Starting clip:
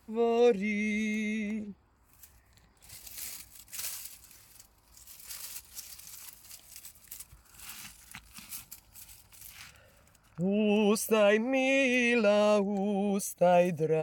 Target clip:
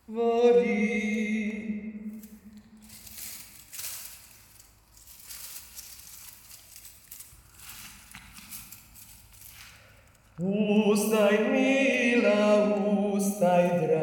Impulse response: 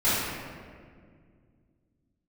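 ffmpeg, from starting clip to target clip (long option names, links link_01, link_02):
-filter_complex "[0:a]asplit=2[link_01][link_02];[1:a]atrim=start_sample=2205,adelay=39[link_03];[link_02][link_03]afir=irnorm=-1:irlink=0,volume=-18dB[link_04];[link_01][link_04]amix=inputs=2:normalize=0"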